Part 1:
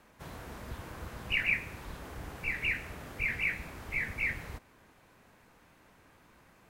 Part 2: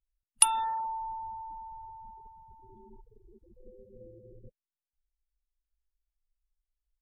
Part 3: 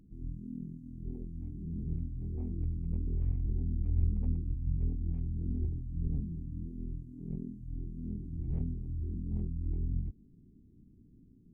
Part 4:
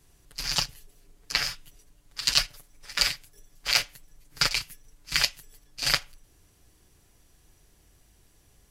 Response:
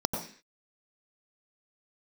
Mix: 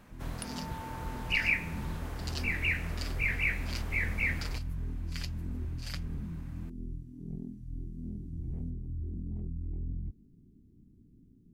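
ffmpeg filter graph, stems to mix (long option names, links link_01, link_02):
-filter_complex "[0:a]volume=1dB[link_01];[1:a]acompressor=threshold=-33dB:ratio=6,volume=-9.5dB[link_02];[2:a]asoftclip=type=tanh:threshold=-26dB,alimiter=level_in=6.5dB:limit=-24dB:level=0:latency=1:release=41,volume=-6.5dB,volume=0dB[link_03];[3:a]volume=-19.5dB[link_04];[link_01][link_02][link_03][link_04]amix=inputs=4:normalize=0"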